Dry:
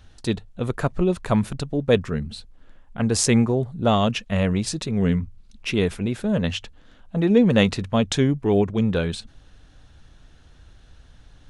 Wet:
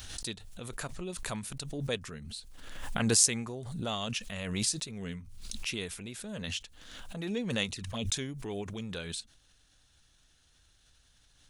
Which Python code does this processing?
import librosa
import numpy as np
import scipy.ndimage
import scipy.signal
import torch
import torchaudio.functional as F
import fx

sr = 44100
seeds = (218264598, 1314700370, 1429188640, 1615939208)

y = fx.env_flanger(x, sr, rest_ms=5.2, full_db=-15.0, at=(7.7, 8.12), fade=0.02)
y = F.preemphasis(torch.from_numpy(y), 0.9).numpy()
y = fx.pre_swell(y, sr, db_per_s=37.0)